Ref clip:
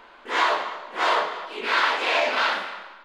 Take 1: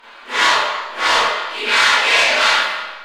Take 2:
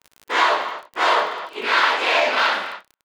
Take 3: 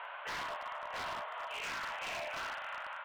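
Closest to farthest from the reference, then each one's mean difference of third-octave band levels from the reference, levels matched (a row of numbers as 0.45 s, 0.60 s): 2, 1, 3; 3.0 dB, 5.0 dB, 8.0 dB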